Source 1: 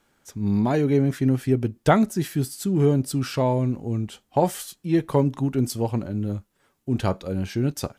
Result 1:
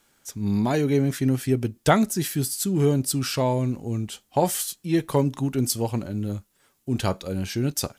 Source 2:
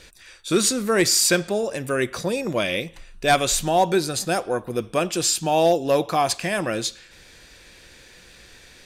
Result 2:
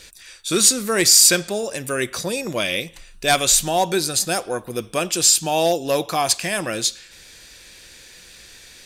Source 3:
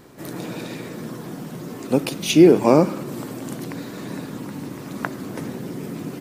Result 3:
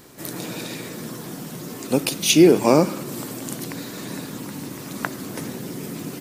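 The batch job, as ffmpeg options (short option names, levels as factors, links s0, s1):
-af "highshelf=f=3000:g=10.5,volume=0.841"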